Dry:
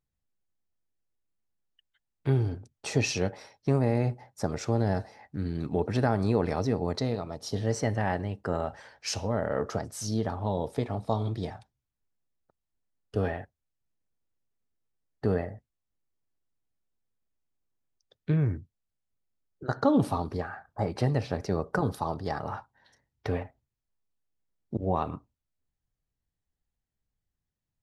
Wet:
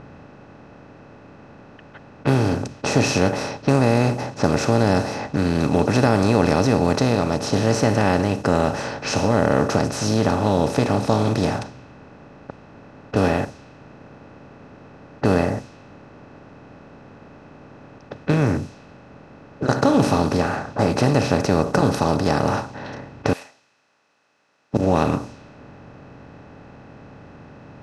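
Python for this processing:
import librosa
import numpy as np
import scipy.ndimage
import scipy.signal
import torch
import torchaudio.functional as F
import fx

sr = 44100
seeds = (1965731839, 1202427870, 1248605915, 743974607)

y = fx.bin_compress(x, sr, power=0.4)
y = fx.differentiator(y, sr, at=(23.33, 24.74))
y = fx.env_lowpass(y, sr, base_hz=1800.0, full_db=-20.5)
y = y * librosa.db_to_amplitude(3.0)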